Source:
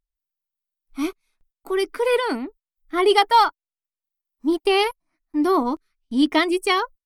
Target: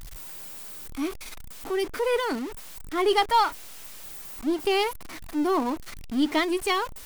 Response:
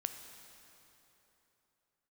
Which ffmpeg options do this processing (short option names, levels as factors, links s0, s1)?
-af "aeval=exprs='val(0)+0.5*0.0501*sgn(val(0))':c=same,aeval=exprs='0.708*(cos(1*acos(clip(val(0)/0.708,-1,1)))-cos(1*PI/2))+0.02*(cos(8*acos(clip(val(0)/0.708,-1,1)))-cos(8*PI/2))':c=same,volume=0.473"